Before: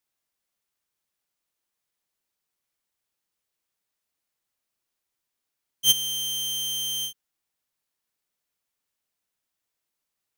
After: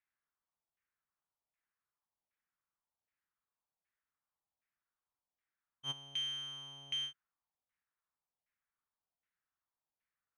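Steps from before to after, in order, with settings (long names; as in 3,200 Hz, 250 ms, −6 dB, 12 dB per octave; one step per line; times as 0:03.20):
auto-filter low-pass saw down 1.3 Hz 700–2,100 Hz
guitar amp tone stack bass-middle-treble 5-5-5
one half of a high-frequency compander decoder only
level +7 dB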